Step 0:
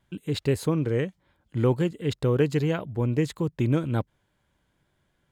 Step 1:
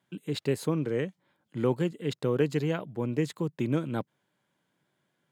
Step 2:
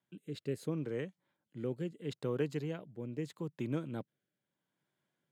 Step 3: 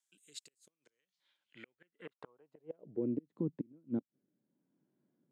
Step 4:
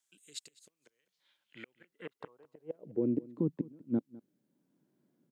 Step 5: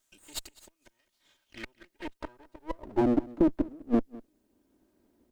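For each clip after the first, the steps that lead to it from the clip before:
high-pass filter 140 Hz 24 dB per octave; level −3 dB
rotating-speaker cabinet horn 0.75 Hz; level −8 dB
gate with flip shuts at −29 dBFS, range −35 dB; brickwall limiter −34 dBFS, peak gain reduction 5.5 dB; band-pass filter sweep 7,500 Hz → 260 Hz, 0:00.77–0:03.23; level +14 dB
single-tap delay 204 ms −20.5 dB; level +4.5 dB
lower of the sound and its delayed copy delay 3.2 ms; level +8 dB

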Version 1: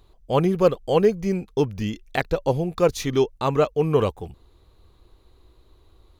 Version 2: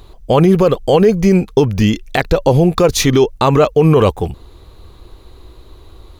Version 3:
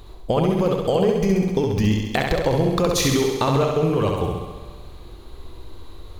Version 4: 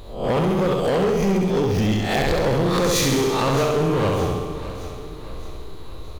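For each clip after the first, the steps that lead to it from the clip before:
boost into a limiter +16.5 dB; level −1 dB
downward compressor, threshold −15 dBFS, peak gain reduction 9 dB; on a send: flutter between parallel walls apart 11.4 metres, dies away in 1.1 s; on the sum: four-comb reverb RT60 2.2 s, combs from 29 ms, DRR 12 dB; level −3 dB
peak hold with a rise ahead of every peak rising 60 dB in 0.49 s; gain into a clipping stage and back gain 17.5 dB; repeating echo 618 ms, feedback 48%, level −14 dB; level +1 dB

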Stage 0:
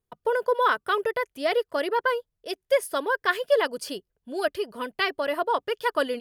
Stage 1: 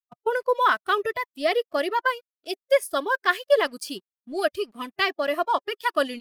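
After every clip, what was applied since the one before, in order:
dead-zone distortion −49 dBFS
noise reduction from a noise print of the clip's start 13 dB
level +2.5 dB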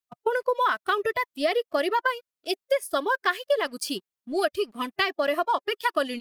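downward compressor 5 to 1, threshold −24 dBFS, peak gain reduction 10.5 dB
level +3.5 dB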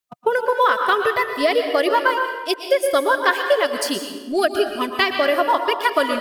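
dense smooth reverb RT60 1.2 s, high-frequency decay 0.7×, pre-delay 105 ms, DRR 5 dB
level +6 dB

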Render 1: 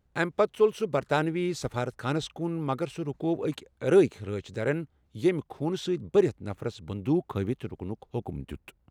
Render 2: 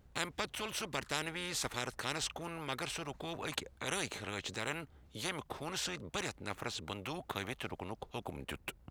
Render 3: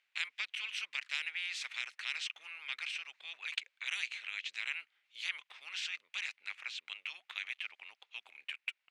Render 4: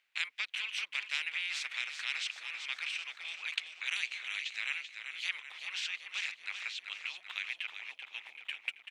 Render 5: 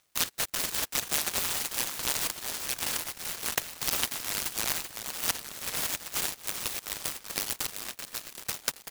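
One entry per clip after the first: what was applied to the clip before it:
every bin compressed towards the loudest bin 4 to 1; level −3 dB
four-pole ladder band-pass 2,700 Hz, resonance 55%; level +10.5 dB
echo with shifted repeats 385 ms, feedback 51%, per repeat −43 Hz, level −8 dB; level +2 dB
short delay modulated by noise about 1,800 Hz, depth 0.35 ms; level +6.5 dB

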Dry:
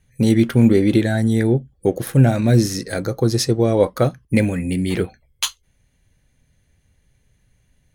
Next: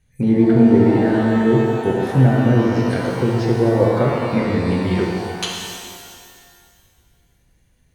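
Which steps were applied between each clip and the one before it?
treble cut that deepens with the level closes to 1,600 Hz, closed at −13 dBFS
reverb with rising layers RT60 2.1 s, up +12 semitones, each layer −8 dB, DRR −2.5 dB
level −3.5 dB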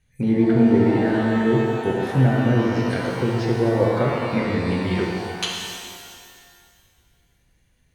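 parametric band 2,500 Hz +4 dB 2.2 octaves
level −4 dB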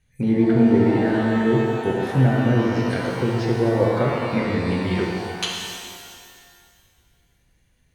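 no processing that can be heard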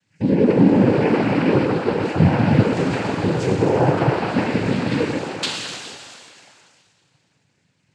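cochlear-implant simulation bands 8
level +2.5 dB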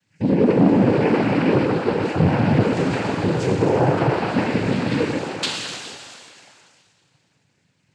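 saturating transformer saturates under 350 Hz

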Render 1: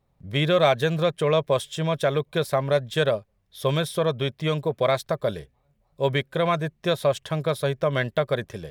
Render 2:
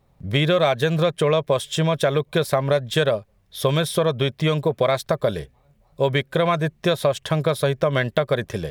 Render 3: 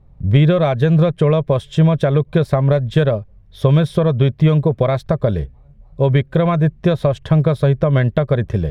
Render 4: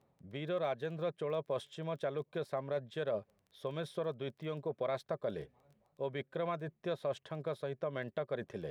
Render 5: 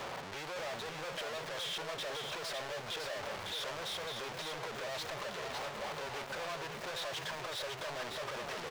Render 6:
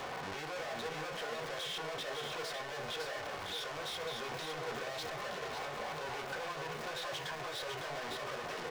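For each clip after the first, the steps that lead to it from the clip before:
downward compressor 3 to 1, threshold −26 dBFS, peak gain reduction 9 dB; level +8.5 dB
RIAA equalisation playback
reversed playback; downward compressor 6 to 1, threshold −23 dBFS, peak gain reduction 15 dB; reversed playback; high-pass filter 310 Hz 12 dB per octave; surface crackle 11 per second −45 dBFS; level −7.5 dB
sign of each sample alone; three-way crossover with the lows and the highs turned down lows −14 dB, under 500 Hz, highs −13 dB, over 6,700 Hz; single-tap delay 556 ms −5 dB; level +1.5 dB
brickwall limiter −36 dBFS, peak gain reduction 9 dB; on a send at −2 dB: convolution reverb RT60 0.35 s, pre-delay 3 ms; on the sum: level +2.5 dB

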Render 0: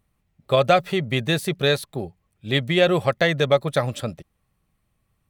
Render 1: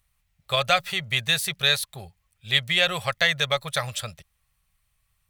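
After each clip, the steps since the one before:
guitar amp tone stack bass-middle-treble 10-0-10
level +6.5 dB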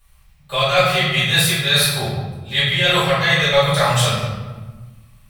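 reversed playback
downward compressor 6 to 1, threshold −29 dBFS, peak gain reduction 13.5 dB
reversed playback
convolution reverb RT60 1.3 s, pre-delay 3 ms, DRR −12 dB
level +1 dB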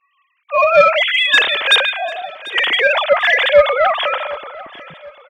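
three sine waves on the formant tracks
soft clipping −5.5 dBFS, distortion −17 dB
repeating echo 743 ms, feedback 37%, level −19 dB
level +4 dB

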